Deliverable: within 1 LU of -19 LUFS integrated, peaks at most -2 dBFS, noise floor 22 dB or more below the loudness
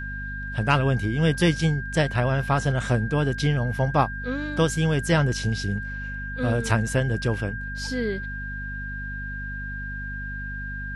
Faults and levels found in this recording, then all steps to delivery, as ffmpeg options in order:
hum 50 Hz; highest harmonic 250 Hz; hum level -32 dBFS; steady tone 1.6 kHz; tone level -33 dBFS; loudness -25.5 LUFS; peak level -6.5 dBFS; loudness target -19.0 LUFS
-> -af "bandreject=f=50:t=h:w=6,bandreject=f=100:t=h:w=6,bandreject=f=150:t=h:w=6,bandreject=f=200:t=h:w=6,bandreject=f=250:t=h:w=6"
-af "bandreject=f=1600:w=30"
-af "volume=2.11,alimiter=limit=0.794:level=0:latency=1"

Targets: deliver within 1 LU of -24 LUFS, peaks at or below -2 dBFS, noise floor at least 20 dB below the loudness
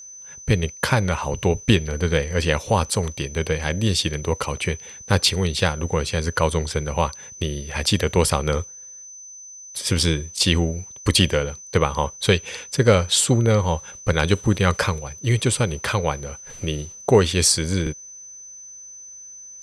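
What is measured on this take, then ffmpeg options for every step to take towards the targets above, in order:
steady tone 6.1 kHz; tone level -38 dBFS; loudness -21.5 LUFS; peak level -2.5 dBFS; loudness target -24.0 LUFS
-> -af "bandreject=f=6100:w=30"
-af "volume=0.75"

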